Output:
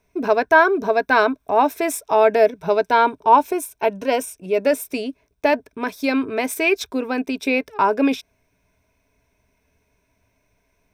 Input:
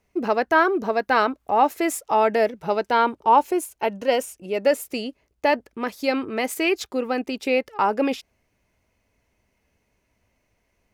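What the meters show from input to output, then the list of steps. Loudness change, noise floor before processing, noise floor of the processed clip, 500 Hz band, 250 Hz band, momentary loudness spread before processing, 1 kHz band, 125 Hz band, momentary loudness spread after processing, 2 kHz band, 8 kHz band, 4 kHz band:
+3.0 dB, −72 dBFS, −68 dBFS, +3.5 dB, +3.0 dB, 8 LU, +2.5 dB, can't be measured, 9 LU, +4.5 dB, +2.5 dB, +0.5 dB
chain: EQ curve with evenly spaced ripples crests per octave 1.6, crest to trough 9 dB
level +2 dB

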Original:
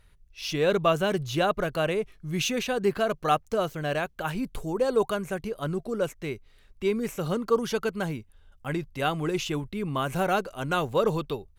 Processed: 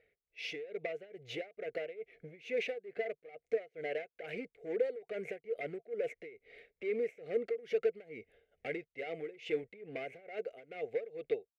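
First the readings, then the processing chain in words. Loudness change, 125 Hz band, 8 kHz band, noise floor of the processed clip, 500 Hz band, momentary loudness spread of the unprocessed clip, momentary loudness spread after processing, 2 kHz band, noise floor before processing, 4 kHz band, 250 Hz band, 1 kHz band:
−11.5 dB, −25.5 dB, below −25 dB, below −85 dBFS, −9.5 dB, 8 LU, 12 LU, −11.0 dB, −58 dBFS, −16.0 dB, −18.5 dB, −22.5 dB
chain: fade-out on the ending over 1.30 s
parametric band 700 Hz +15 dB 0.29 octaves
automatic gain control gain up to 16.5 dB
brickwall limiter −8 dBFS, peak gain reduction 7 dB
downward compressor 10 to 1, threshold −28 dBFS, peak gain reduction 16 dB
hard clipping −28 dBFS, distortion −13 dB
pair of resonant band-passes 1,000 Hz, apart 2.2 octaves
amplitude tremolo 2.3 Hz, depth 90%
one half of a high-frequency compander decoder only
level +8 dB

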